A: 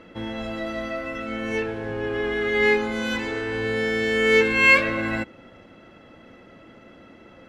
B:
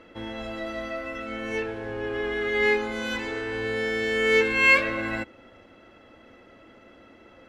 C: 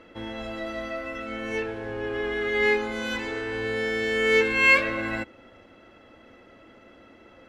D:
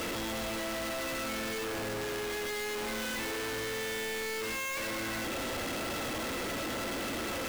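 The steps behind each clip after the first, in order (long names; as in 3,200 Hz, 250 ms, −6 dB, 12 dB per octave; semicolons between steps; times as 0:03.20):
parametric band 160 Hz −9.5 dB 0.74 octaves; level −2.5 dB
no processing that can be heard
sign of each sample alone; level −7.5 dB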